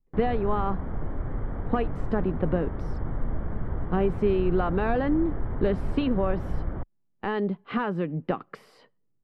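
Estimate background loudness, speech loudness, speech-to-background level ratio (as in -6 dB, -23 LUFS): -34.5 LUFS, -28.5 LUFS, 6.0 dB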